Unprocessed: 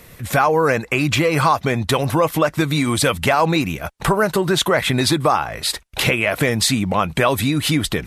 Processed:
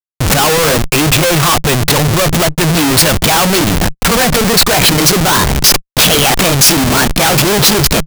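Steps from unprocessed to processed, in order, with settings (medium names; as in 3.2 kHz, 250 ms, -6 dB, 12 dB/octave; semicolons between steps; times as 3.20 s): pitch bend over the whole clip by +5.5 st starting unshifted; Schmitt trigger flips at -25.5 dBFS; dynamic bell 150 Hz, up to +8 dB, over -40 dBFS, Q 5.2; waveshaping leveller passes 3; treble shelf 3 kHz +8 dB; trim +1.5 dB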